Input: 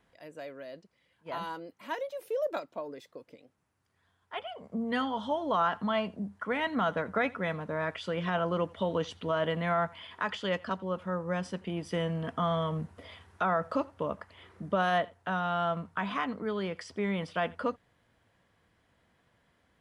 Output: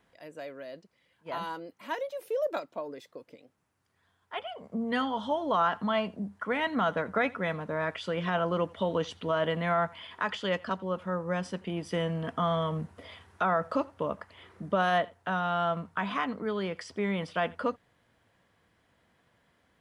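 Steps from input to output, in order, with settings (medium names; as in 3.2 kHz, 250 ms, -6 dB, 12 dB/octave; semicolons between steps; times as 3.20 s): bass shelf 79 Hz -5.5 dB; trim +1.5 dB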